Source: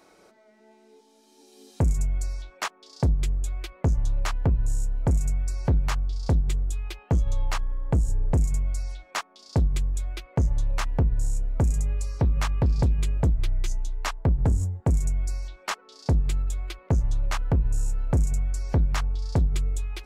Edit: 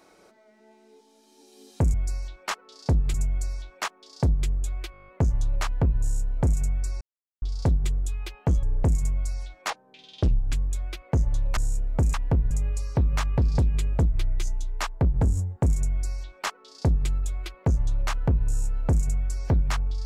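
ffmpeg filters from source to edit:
-filter_complex "[0:a]asplit=19[a][b][c][d][e][f][g][h][i][j][k][l][m][n][o][p][q][r][s];[a]atrim=end=1.942[t];[b]atrim=start=15.138:end=16.342[u];[c]atrim=start=1.938:end=3.742[v];[d]atrim=start=3.718:end=3.742[w];[e]atrim=start=3.718:end=3.742[x];[f]atrim=start=3.718:end=3.742[y];[g]atrim=start=3.718:end=3.742[z];[h]atrim=start=3.718:end=3.742[aa];[i]atrim=start=3.718:end=3.742[ab];[j]atrim=start=3.718:end=3.742[ac];[k]atrim=start=3.718:end=5.65,asetpts=PTS-STARTPTS,afade=t=out:st=1.928:d=0.004:c=hsin[ad];[l]atrim=start=5.65:end=6.06,asetpts=PTS-STARTPTS,volume=0[ae];[m]atrim=start=6.06:end=7.272,asetpts=PTS-STARTPTS,afade=t=in:d=0.004:c=hsin[af];[n]atrim=start=8.118:end=9.194[ag];[o]atrim=start=9.19:end=9.77,asetpts=PTS-STARTPTS,asetrate=30870,aresample=44100[ah];[p]atrim=start=9.766:end=10.812[ai];[q]atrim=start=11.178:end=11.752[aj];[r]atrim=start=10.808:end=11.182[ak];[s]atrim=start=11.748[al];[t][u]acrossfade=d=0.004:c1=hsin:c2=hsin[am];[am][v]acrossfade=d=0.004:c1=hsin:c2=hsin[an];[an][w]acrossfade=d=0.004:c1=hsin:c2=hsin[ao];[ao][x]acrossfade=d=0.004:c1=hsin:c2=hsin[ap];[ap][y]acrossfade=d=0.004:c1=hsin:c2=hsin[aq];[aq][z]acrossfade=d=0.004:c1=hsin:c2=hsin[ar];[ar][aa]acrossfade=d=0.004:c1=hsin:c2=hsin[as];[as][ab]acrossfade=d=0.004:c1=hsin:c2=hsin[at];[at][ac]acrossfade=d=0.004:c1=hsin:c2=hsin[au];[ad][ae][af]concat=n=3:v=0:a=1[av];[au][av]acrossfade=d=0.004:c1=hsin:c2=hsin[aw];[aw][ag]acrossfade=d=0.004:c1=hsin:c2=hsin[ax];[ax][ah]acrossfade=d=0.004:c1=hsin:c2=hsin[ay];[ay][ai]acrossfade=d=0.004:c1=hsin:c2=hsin[az];[az][aj]acrossfade=d=0.004:c1=hsin:c2=hsin[ba];[ba][ak]acrossfade=d=0.004:c1=hsin:c2=hsin[bb];[bb][al]acrossfade=d=0.004:c1=hsin:c2=hsin"

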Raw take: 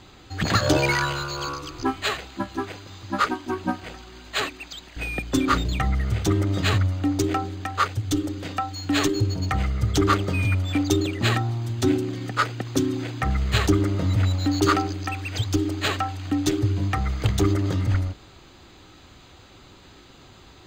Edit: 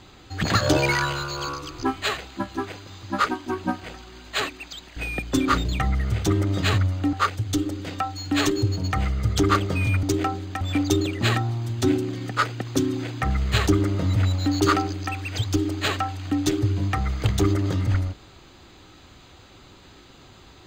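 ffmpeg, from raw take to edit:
-filter_complex "[0:a]asplit=4[a][b][c][d];[a]atrim=end=7.132[e];[b]atrim=start=7.708:end=10.612[f];[c]atrim=start=7.128:end=7.712[g];[d]atrim=start=10.608[h];[e][f]acrossfade=d=0.004:c1=hsin:c2=hsin[i];[i][g]acrossfade=d=0.004:c1=hsin:c2=hsin[j];[j][h]acrossfade=d=0.004:c1=hsin:c2=hsin"

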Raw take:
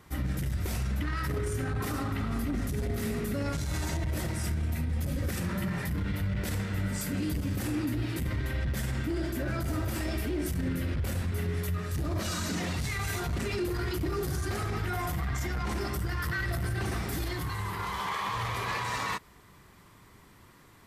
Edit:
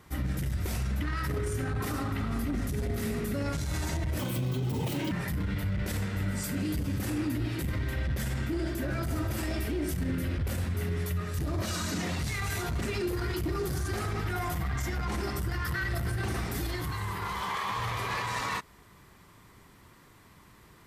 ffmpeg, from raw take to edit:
-filter_complex "[0:a]asplit=3[a][b][c];[a]atrim=end=4.194[d];[b]atrim=start=4.19:end=5.69,asetpts=PTS-STARTPTS,asetrate=71442,aresample=44100,atrim=end_sample=40833,asetpts=PTS-STARTPTS[e];[c]atrim=start=5.686[f];[d][e]acrossfade=d=0.004:c1=hsin:c2=hsin[g];[g][f]acrossfade=d=0.004:c1=hsin:c2=hsin"

